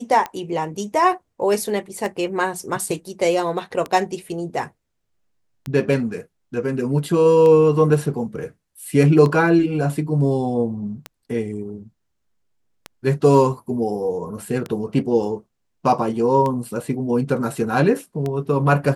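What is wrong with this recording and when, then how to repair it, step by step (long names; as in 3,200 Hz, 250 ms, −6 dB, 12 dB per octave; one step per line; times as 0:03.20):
scratch tick 33 1/3 rpm −13 dBFS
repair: click removal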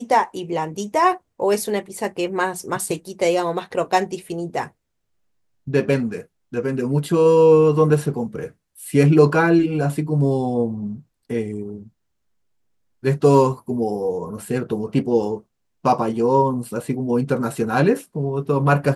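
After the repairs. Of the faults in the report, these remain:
none of them is left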